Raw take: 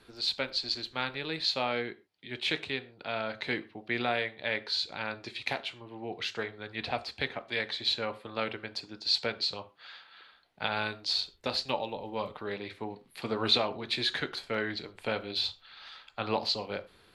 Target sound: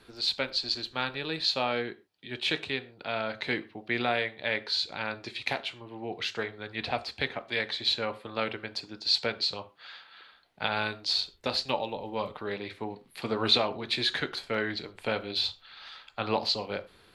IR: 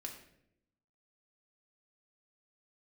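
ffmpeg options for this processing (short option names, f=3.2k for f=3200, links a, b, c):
-filter_complex "[0:a]asettb=1/sr,asplit=3[a][b][c];[a]atrim=end=0.554[d];[b]atrim=start=0.55:end=2.69,asetpts=PTS-STARTPTS,afade=t=in:d=0.004:c=qsin,afade=t=out:st=2.136:d=0.004:c=qsin,bandreject=f=2.1k:w=12[e];[c]atrim=start=2.686[f];[d][e]acrossfade=d=0.004:c1=hsin:c2=qsin[g];[g][f]acrossfade=d=0.004:c1=qsin:c2=hsin,volume=2dB"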